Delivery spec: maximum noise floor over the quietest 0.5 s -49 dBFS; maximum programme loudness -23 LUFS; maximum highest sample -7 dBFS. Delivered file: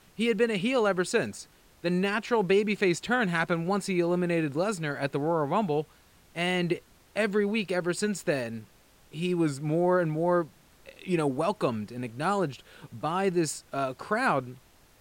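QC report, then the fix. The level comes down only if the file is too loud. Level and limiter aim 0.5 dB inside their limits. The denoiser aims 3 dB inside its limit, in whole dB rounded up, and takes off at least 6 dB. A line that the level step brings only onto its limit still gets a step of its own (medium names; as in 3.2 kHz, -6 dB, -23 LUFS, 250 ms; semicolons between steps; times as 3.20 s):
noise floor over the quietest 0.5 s -58 dBFS: pass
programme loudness -28.0 LUFS: pass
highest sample -11.5 dBFS: pass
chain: none needed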